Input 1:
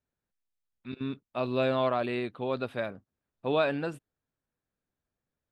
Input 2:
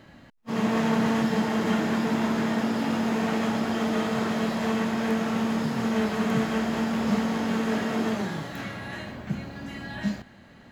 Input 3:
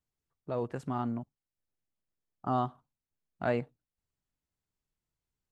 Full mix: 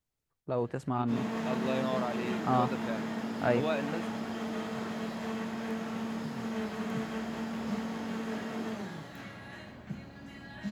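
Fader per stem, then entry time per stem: -6.5 dB, -10.0 dB, +2.0 dB; 0.10 s, 0.60 s, 0.00 s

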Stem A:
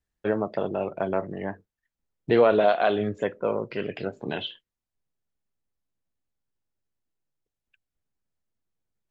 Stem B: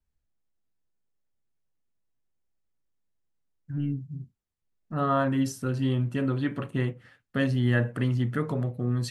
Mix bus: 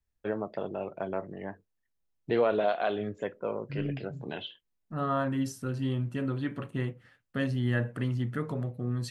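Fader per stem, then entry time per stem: -7.0 dB, -4.5 dB; 0.00 s, 0.00 s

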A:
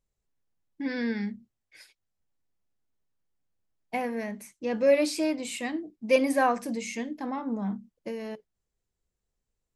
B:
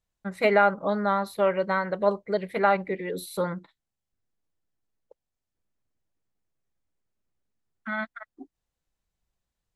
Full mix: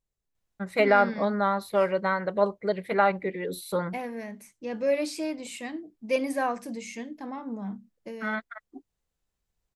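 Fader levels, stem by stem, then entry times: -4.0 dB, -0.5 dB; 0.00 s, 0.35 s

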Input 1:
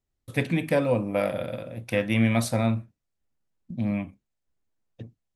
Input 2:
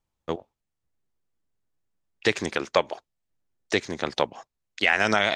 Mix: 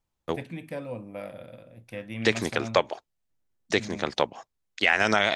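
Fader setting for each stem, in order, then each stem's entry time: -12.5 dB, -0.5 dB; 0.00 s, 0.00 s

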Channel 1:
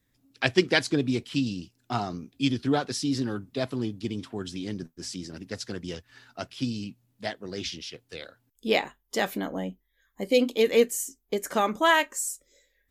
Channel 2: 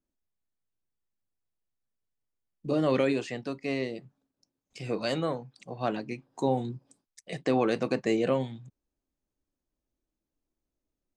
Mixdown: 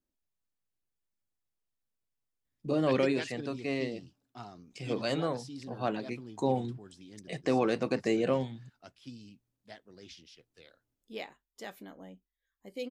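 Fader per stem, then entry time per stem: -17.0 dB, -2.0 dB; 2.45 s, 0.00 s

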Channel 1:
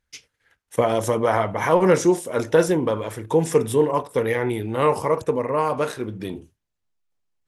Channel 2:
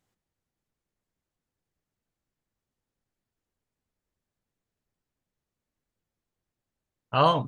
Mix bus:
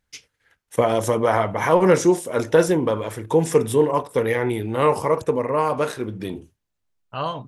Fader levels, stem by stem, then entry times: +1.0 dB, -6.0 dB; 0.00 s, 0.00 s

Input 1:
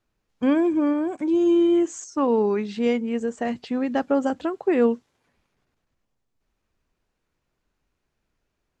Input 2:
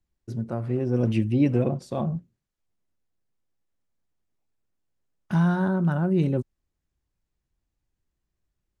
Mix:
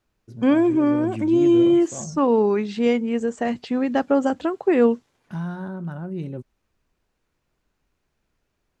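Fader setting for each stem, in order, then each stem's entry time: +2.5 dB, -8.0 dB; 0.00 s, 0.00 s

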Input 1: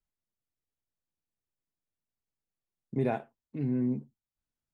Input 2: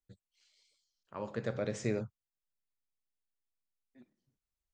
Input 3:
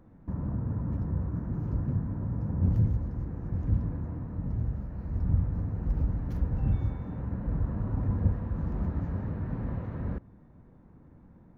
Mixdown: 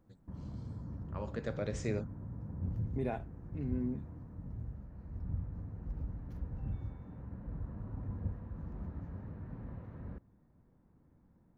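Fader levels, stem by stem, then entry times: -7.0 dB, -2.5 dB, -12.0 dB; 0.00 s, 0.00 s, 0.00 s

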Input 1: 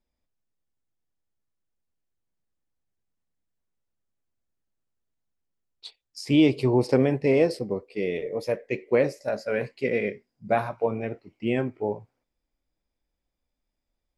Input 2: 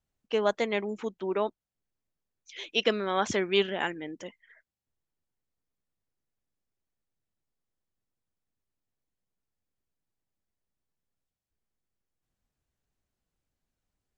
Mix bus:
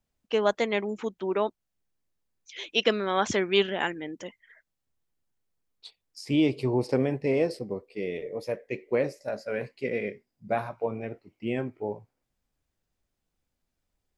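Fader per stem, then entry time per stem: -4.5 dB, +2.0 dB; 0.00 s, 0.00 s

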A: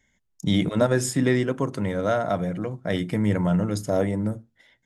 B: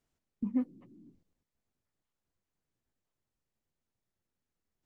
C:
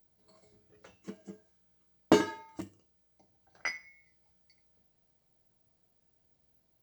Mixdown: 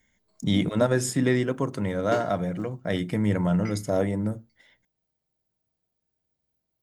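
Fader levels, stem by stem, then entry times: -1.5 dB, -5.5 dB, -8.5 dB; 0.00 s, 0.00 s, 0.00 s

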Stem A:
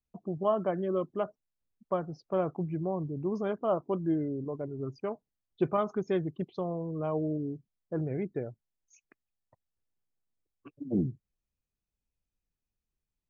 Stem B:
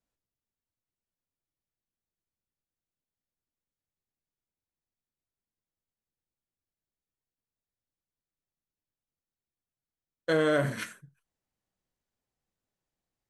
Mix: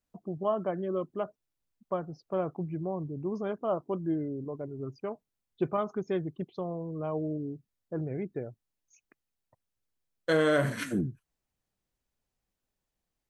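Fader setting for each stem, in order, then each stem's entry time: -1.5 dB, +0.5 dB; 0.00 s, 0.00 s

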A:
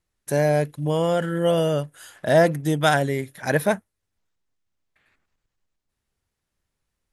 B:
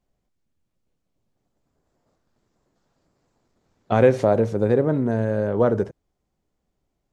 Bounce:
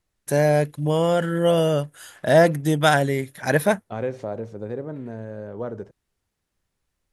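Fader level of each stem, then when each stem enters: +1.5 dB, -12.0 dB; 0.00 s, 0.00 s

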